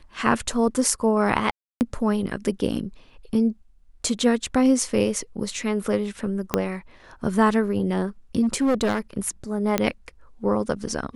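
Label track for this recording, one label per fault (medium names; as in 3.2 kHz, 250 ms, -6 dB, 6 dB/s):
1.510000	1.810000	dropout 299 ms
6.540000	6.540000	pop -6 dBFS
8.420000	8.990000	clipped -17 dBFS
9.780000	9.780000	pop -6 dBFS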